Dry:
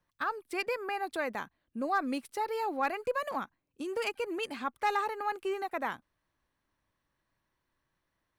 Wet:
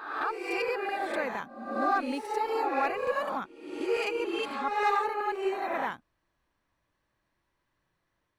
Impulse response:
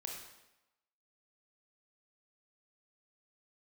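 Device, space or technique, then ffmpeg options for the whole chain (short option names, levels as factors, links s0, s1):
reverse reverb: -filter_complex "[0:a]highshelf=f=8800:g=-8.5,areverse[s0];[1:a]atrim=start_sample=2205[s1];[s0][s1]afir=irnorm=-1:irlink=0,areverse,volume=1.78"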